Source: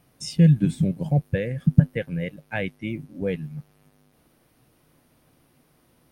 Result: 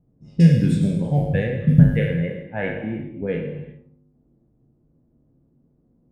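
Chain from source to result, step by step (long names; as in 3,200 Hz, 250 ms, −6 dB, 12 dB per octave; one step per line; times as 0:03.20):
peak hold with a decay on every bin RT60 0.69 s
low-pass that shuts in the quiet parts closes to 300 Hz, open at −15 dBFS
reverb whose tail is shaped and stops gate 410 ms falling, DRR 4 dB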